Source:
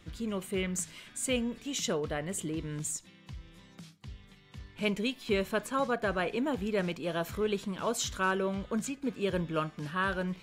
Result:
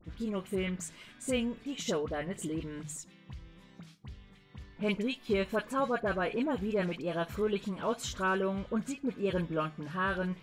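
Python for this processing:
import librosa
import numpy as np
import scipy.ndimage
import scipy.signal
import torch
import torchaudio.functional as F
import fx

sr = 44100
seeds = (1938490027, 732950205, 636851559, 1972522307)

y = fx.high_shelf(x, sr, hz=3800.0, db=-8.5)
y = fx.hum_notches(y, sr, base_hz=50, count=3)
y = fx.dispersion(y, sr, late='highs', ms=48.0, hz=1600.0)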